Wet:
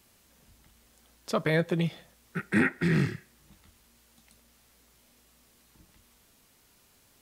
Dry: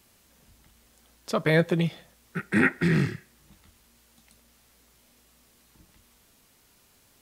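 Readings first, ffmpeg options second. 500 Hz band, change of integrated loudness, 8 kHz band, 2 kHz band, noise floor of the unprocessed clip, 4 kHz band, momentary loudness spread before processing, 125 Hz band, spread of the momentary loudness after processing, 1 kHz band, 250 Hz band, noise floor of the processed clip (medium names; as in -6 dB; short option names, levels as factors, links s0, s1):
-3.5 dB, -3.0 dB, -2.0 dB, -3.5 dB, -62 dBFS, -3.0 dB, 15 LU, -2.5 dB, 14 LU, -3.0 dB, -2.5 dB, -63 dBFS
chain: -af "alimiter=limit=0.251:level=0:latency=1:release=382,volume=0.841"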